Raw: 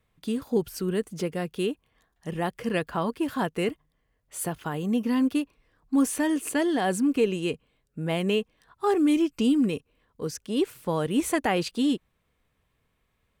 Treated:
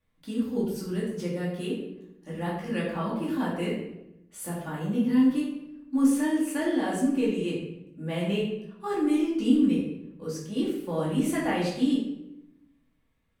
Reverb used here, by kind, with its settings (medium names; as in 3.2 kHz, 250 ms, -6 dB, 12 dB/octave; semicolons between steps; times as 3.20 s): simulated room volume 250 m³, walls mixed, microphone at 2.4 m; trim -11 dB